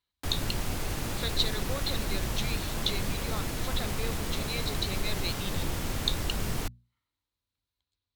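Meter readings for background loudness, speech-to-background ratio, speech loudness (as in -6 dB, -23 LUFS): -33.5 LUFS, -2.0 dB, -35.5 LUFS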